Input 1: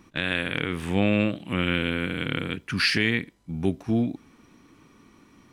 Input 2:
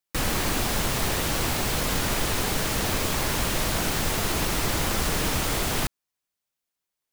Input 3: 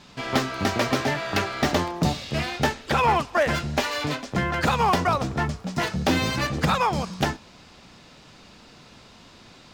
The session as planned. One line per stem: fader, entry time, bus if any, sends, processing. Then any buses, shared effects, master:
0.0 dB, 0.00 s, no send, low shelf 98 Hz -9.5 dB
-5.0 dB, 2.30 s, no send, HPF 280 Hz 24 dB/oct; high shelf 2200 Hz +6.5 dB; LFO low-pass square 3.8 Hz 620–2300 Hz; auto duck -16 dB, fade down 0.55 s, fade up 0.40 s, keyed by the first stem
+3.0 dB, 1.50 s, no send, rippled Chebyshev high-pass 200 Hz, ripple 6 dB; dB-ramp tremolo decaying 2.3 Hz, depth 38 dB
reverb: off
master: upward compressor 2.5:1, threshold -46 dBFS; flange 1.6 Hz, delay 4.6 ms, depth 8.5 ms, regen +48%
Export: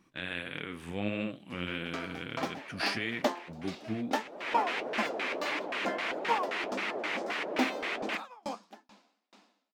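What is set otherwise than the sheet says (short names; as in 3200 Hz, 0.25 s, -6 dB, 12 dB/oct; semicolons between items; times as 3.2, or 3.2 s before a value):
stem 1 0.0 dB -> -6.5 dB; master: missing upward compressor 2.5:1, threshold -46 dBFS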